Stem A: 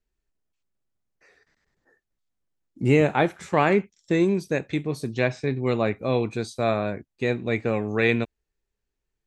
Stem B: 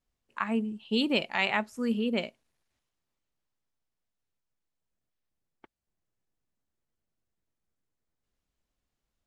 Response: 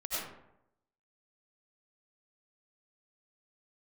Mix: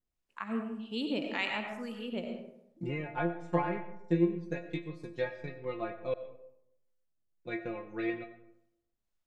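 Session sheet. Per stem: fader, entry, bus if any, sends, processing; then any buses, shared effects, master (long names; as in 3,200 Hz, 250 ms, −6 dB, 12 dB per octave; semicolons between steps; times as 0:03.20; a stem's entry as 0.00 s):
−4.0 dB, 0.00 s, muted 0:06.14–0:07.45, send −14.5 dB, treble cut that deepens with the level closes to 2,200 Hz, closed at −17.5 dBFS; transient designer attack +7 dB, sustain −7 dB; stiff-string resonator 170 Hz, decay 0.25 s, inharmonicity 0.002
−7.5 dB, 0.00 s, send −5 dB, two-band tremolo in antiphase 1.8 Hz, depth 70%, crossover 750 Hz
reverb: on, RT60 0.80 s, pre-delay 55 ms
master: no processing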